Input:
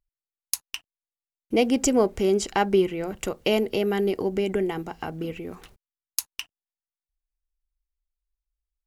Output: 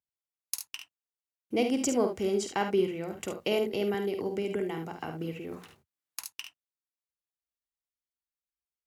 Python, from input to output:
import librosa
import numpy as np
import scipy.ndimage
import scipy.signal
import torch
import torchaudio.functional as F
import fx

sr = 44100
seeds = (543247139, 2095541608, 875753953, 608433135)

y = scipy.signal.sosfilt(scipy.signal.butter(4, 81.0, 'highpass', fs=sr, output='sos'), x)
y = fx.room_early_taps(y, sr, ms=(49, 72), db=(-8.0, -9.0))
y = fx.band_squash(y, sr, depth_pct=40, at=(3.94, 6.25))
y = F.gain(torch.from_numpy(y), -7.0).numpy()